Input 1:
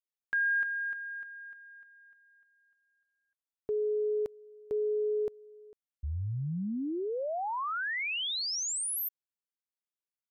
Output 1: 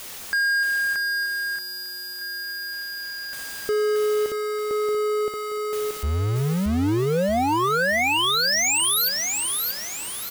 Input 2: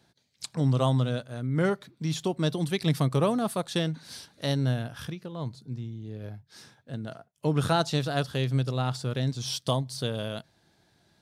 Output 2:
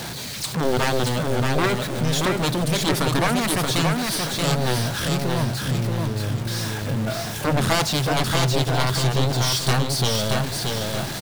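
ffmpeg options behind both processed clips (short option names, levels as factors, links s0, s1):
-af "aeval=exprs='val(0)+0.5*0.0178*sgn(val(0))':c=same,aeval=exprs='0.282*(cos(1*acos(clip(val(0)/0.282,-1,1)))-cos(1*PI/2))+0.0562*(cos(3*acos(clip(val(0)/0.282,-1,1)))-cos(3*PI/2))+0.112*(cos(7*acos(clip(val(0)/0.282,-1,1)))-cos(7*PI/2))':c=same,aecho=1:1:628|1256|1884|2512|3140:0.668|0.261|0.102|0.0396|0.0155,volume=1.19"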